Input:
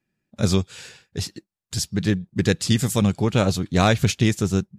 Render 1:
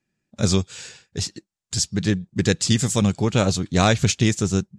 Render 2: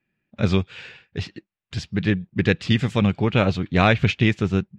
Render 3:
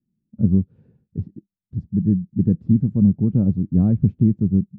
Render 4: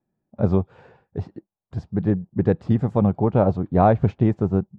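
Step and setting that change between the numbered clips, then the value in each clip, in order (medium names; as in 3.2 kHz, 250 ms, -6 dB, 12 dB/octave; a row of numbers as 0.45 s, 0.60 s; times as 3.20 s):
resonant low-pass, frequency: 7.4 kHz, 2.6 kHz, 220 Hz, 820 Hz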